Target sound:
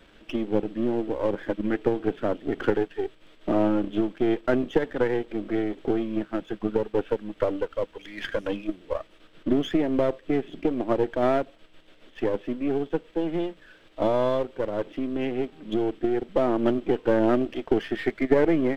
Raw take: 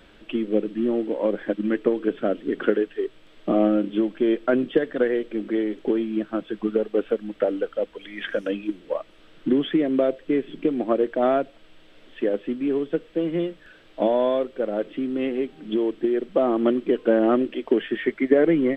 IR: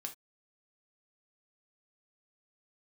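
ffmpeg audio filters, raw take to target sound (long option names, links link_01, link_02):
-af "aeval=exprs='if(lt(val(0),0),0.447*val(0),val(0))':channel_layout=same"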